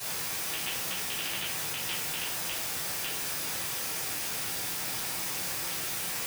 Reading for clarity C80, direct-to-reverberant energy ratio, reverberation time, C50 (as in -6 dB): 8.5 dB, -12.5 dB, 0.50 s, 3.5 dB